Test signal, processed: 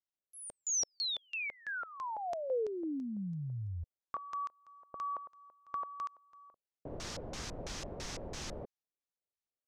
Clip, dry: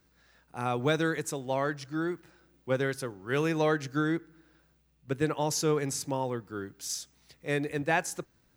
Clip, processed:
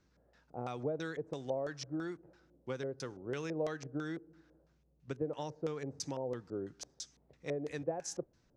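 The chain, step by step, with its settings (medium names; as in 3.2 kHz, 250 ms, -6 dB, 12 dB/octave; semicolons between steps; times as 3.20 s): compression 5:1, threshold -34 dBFS; LFO low-pass square 3 Hz 570–6000 Hz; tape noise reduction on one side only decoder only; trim -3 dB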